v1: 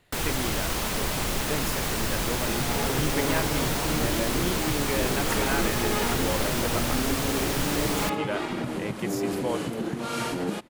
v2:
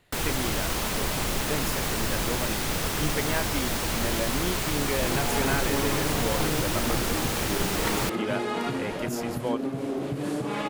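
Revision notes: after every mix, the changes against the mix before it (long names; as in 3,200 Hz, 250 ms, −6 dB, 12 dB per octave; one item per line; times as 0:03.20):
second sound: entry +2.55 s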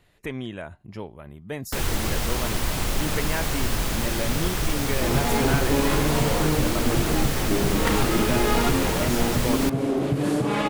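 first sound: entry +1.60 s
second sound +5.5 dB
master: add low-shelf EQ 100 Hz +7.5 dB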